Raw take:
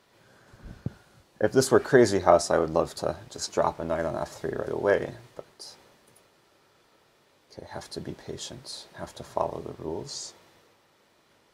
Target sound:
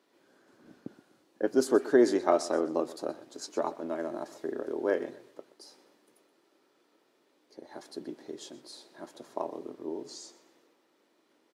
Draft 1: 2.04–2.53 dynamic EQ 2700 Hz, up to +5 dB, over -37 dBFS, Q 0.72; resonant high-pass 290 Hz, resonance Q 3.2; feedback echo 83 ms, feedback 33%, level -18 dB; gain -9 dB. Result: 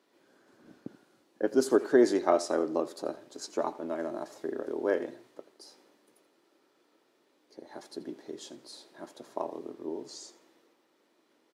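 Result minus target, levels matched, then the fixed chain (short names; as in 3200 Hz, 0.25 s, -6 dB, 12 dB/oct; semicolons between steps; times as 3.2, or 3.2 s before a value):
echo 42 ms early
2.04–2.53 dynamic EQ 2700 Hz, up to +5 dB, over -37 dBFS, Q 0.72; resonant high-pass 290 Hz, resonance Q 3.2; feedback echo 0.125 s, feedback 33%, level -18 dB; gain -9 dB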